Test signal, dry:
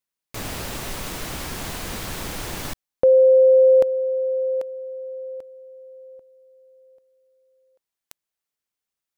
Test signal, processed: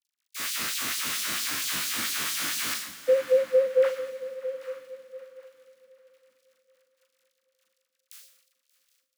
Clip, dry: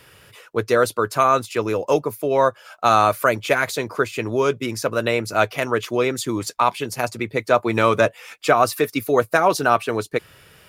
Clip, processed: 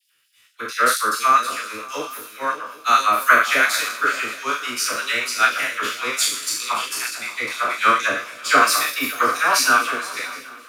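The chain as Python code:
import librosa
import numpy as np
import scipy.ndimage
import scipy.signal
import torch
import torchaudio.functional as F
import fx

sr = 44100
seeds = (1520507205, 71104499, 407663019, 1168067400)

y = fx.spec_trails(x, sr, decay_s=0.89)
y = fx.dynamic_eq(y, sr, hz=180.0, q=1.9, threshold_db=-38.0, ratio=4.0, max_db=-5)
y = fx.dmg_crackle(y, sr, seeds[0], per_s=72.0, level_db=-36.0)
y = fx.band_shelf(y, sr, hz=570.0, db=-14.0, octaves=1.7)
y = fx.dispersion(y, sr, late='lows', ms=56.0, hz=960.0)
y = fx.filter_lfo_highpass(y, sr, shape='sine', hz=4.4, low_hz=300.0, high_hz=4800.0, q=1.2)
y = fx.doubler(y, sr, ms=41.0, db=-7.0)
y = fx.echo_swing(y, sr, ms=775, ratio=3, feedback_pct=52, wet_db=-13.5)
y = fx.band_widen(y, sr, depth_pct=70)
y = y * 10.0 ** (1.0 / 20.0)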